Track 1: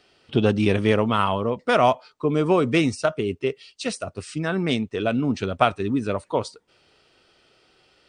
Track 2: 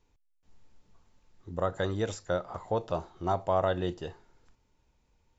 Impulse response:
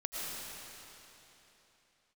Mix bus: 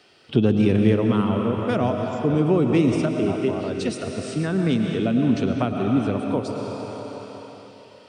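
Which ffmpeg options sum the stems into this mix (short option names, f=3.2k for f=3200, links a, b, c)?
-filter_complex "[0:a]volume=0.5dB,asplit=2[a][b];[b]volume=-3dB[c];[1:a]volume=1.5dB[d];[2:a]atrim=start_sample=2205[e];[c][e]afir=irnorm=-1:irlink=0[f];[a][d][f]amix=inputs=3:normalize=0,highpass=98,acrossover=split=370[g][h];[h]acompressor=threshold=-34dB:ratio=2.5[i];[g][i]amix=inputs=2:normalize=0"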